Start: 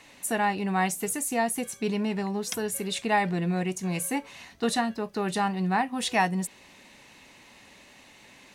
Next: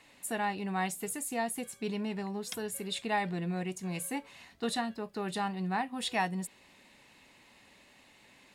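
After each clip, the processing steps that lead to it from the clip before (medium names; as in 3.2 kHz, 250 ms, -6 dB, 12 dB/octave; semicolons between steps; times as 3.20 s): band-stop 6 kHz, Q 8.2; dynamic bell 3.6 kHz, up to +4 dB, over -47 dBFS, Q 3; trim -7 dB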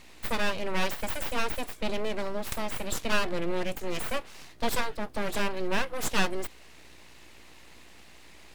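hum 60 Hz, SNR 24 dB; full-wave rectifier; trim +7.5 dB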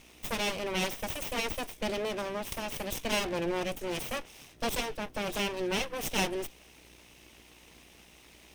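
comb filter that takes the minimum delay 0.34 ms; trim +1 dB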